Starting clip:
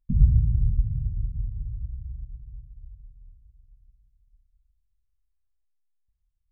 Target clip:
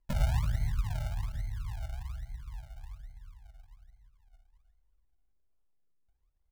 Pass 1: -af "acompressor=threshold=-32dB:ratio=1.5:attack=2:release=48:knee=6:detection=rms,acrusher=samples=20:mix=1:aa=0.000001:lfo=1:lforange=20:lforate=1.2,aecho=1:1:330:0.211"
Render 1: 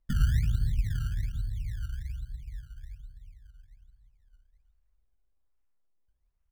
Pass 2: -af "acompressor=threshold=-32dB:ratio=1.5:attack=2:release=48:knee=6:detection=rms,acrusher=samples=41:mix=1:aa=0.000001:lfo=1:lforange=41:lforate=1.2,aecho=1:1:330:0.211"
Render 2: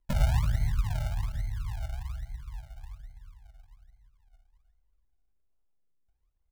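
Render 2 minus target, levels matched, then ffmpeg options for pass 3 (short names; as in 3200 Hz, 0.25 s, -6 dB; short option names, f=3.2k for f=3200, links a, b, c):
compressor: peak gain reduction -3.5 dB
-af "acompressor=threshold=-42dB:ratio=1.5:attack=2:release=48:knee=6:detection=rms,acrusher=samples=41:mix=1:aa=0.000001:lfo=1:lforange=41:lforate=1.2,aecho=1:1:330:0.211"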